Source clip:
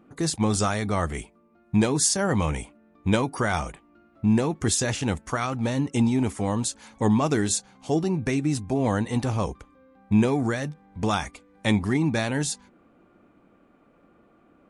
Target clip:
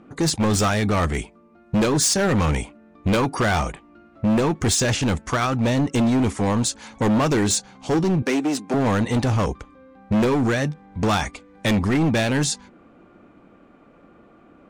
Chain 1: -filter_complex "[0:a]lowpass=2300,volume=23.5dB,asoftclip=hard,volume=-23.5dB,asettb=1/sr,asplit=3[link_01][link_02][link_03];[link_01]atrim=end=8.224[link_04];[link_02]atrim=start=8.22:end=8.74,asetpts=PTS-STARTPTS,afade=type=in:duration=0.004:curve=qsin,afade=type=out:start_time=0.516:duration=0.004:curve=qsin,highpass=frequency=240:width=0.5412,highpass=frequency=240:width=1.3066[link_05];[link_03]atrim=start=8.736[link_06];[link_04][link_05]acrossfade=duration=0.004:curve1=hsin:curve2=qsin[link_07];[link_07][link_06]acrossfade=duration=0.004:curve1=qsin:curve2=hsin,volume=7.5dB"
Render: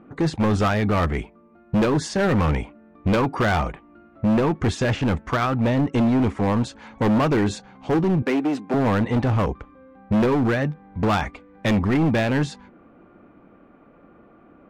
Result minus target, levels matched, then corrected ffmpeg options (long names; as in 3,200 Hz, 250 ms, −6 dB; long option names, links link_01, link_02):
8,000 Hz band −15.5 dB
-filter_complex "[0:a]lowpass=7600,volume=23.5dB,asoftclip=hard,volume=-23.5dB,asettb=1/sr,asplit=3[link_01][link_02][link_03];[link_01]atrim=end=8.224[link_04];[link_02]atrim=start=8.22:end=8.74,asetpts=PTS-STARTPTS,afade=type=in:duration=0.004:curve=qsin,afade=type=out:start_time=0.516:duration=0.004:curve=qsin,highpass=frequency=240:width=0.5412,highpass=frequency=240:width=1.3066[link_05];[link_03]atrim=start=8.736[link_06];[link_04][link_05]acrossfade=duration=0.004:curve1=hsin:curve2=qsin[link_07];[link_07][link_06]acrossfade=duration=0.004:curve1=qsin:curve2=hsin,volume=7.5dB"